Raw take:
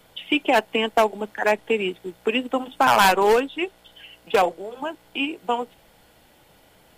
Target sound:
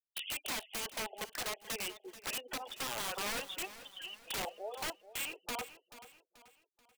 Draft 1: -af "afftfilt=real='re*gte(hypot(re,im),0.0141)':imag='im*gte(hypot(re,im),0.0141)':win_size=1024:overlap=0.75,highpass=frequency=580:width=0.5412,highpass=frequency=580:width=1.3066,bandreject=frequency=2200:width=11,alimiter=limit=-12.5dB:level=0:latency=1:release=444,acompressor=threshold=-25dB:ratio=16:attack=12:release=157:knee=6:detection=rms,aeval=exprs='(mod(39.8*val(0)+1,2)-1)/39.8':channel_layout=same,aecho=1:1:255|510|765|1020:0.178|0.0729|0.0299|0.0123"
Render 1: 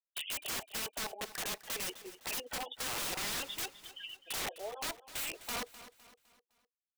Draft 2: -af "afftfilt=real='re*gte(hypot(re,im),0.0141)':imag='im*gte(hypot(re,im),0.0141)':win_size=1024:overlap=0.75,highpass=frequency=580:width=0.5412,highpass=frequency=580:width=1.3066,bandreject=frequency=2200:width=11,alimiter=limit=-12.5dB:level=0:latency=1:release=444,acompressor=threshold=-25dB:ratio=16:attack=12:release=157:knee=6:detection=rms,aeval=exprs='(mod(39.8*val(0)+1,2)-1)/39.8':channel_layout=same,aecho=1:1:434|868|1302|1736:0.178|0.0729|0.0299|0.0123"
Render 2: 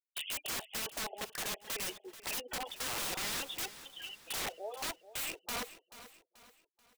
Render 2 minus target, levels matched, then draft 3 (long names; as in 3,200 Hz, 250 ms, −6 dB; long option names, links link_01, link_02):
downward compressor: peak gain reduction −6 dB
-af "afftfilt=real='re*gte(hypot(re,im),0.0141)':imag='im*gte(hypot(re,im),0.0141)':win_size=1024:overlap=0.75,highpass=frequency=580:width=0.5412,highpass=frequency=580:width=1.3066,bandreject=frequency=2200:width=11,alimiter=limit=-12.5dB:level=0:latency=1:release=444,acompressor=threshold=-31.5dB:ratio=16:attack=12:release=157:knee=6:detection=rms,aeval=exprs='(mod(39.8*val(0)+1,2)-1)/39.8':channel_layout=same,aecho=1:1:434|868|1302|1736:0.178|0.0729|0.0299|0.0123"